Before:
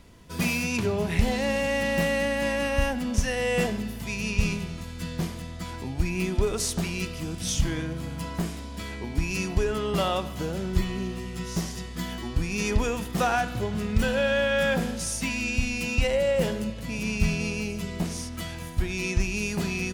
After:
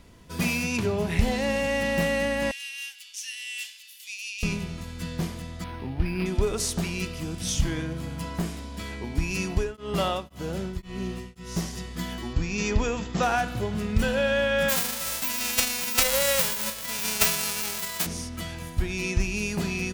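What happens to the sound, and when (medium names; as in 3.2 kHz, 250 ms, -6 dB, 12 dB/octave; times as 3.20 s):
2.51–4.43 s: Chebyshev high-pass 2.8 kHz, order 3
5.64–6.26 s: decimation joined by straight lines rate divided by 6×
9.51–11.73 s: tremolo of two beating tones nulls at 1.9 Hz
12.33–13.23 s: brick-wall FIR low-pass 7.8 kHz
14.68–18.05 s: formants flattened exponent 0.1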